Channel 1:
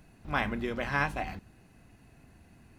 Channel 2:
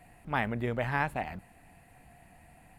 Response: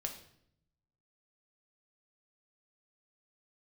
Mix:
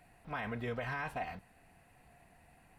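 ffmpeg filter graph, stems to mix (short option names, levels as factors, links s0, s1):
-filter_complex "[0:a]highpass=f=470:w=0.5412,highpass=f=470:w=1.3066,highshelf=f=4100:g=-8.5,bandreject=f=6700:w=8.1,volume=0.668[s0];[1:a]volume=0.447[s1];[s0][s1]amix=inputs=2:normalize=0,alimiter=level_in=1.78:limit=0.0631:level=0:latency=1:release=29,volume=0.562"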